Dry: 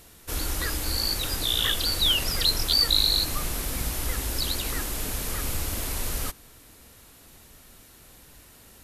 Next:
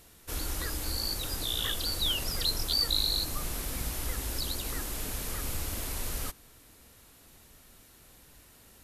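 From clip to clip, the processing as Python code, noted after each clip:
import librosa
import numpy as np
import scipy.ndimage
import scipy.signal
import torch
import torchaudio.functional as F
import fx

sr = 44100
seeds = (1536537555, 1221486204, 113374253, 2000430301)

y = fx.dynamic_eq(x, sr, hz=2300.0, q=0.87, threshold_db=-37.0, ratio=4.0, max_db=-4)
y = y * 10.0 ** (-5.0 / 20.0)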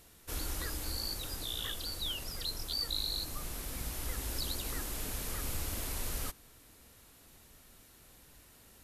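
y = fx.rider(x, sr, range_db=4, speed_s=2.0)
y = y * 10.0 ** (-6.0 / 20.0)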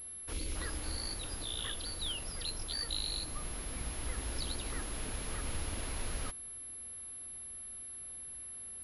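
y = fx.spec_erase(x, sr, start_s=0.33, length_s=0.22, low_hz=560.0, high_hz=2000.0)
y = fx.pwm(y, sr, carrier_hz=11000.0)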